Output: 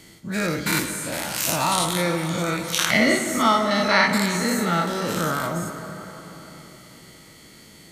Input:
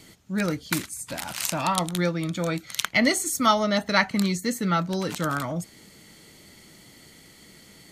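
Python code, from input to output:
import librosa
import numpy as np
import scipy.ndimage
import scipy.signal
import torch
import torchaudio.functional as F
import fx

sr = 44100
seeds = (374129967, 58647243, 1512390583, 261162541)

y = fx.spec_dilate(x, sr, span_ms=120)
y = fx.high_shelf(y, sr, hz=3700.0, db=-8.5, at=(2.97, 3.71))
y = fx.rev_plate(y, sr, seeds[0], rt60_s=4.0, hf_ratio=0.5, predelay_ms=0, drr_db=6.0)
y = y * 10.0 ** (-2.5 / 20.0)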